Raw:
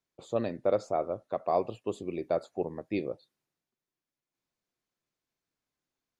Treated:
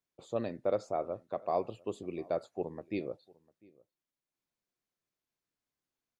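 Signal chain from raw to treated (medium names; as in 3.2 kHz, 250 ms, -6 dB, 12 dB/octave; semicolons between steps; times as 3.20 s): echo from a far wall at 120 m, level -25 dB; trim -4 dB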